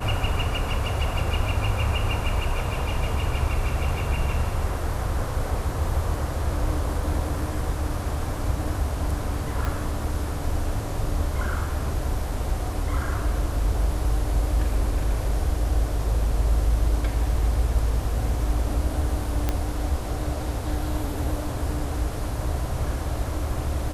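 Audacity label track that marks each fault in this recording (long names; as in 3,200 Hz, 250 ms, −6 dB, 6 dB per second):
9.650000	9.650000	click
19.490000	19.490000	click −10 dBFS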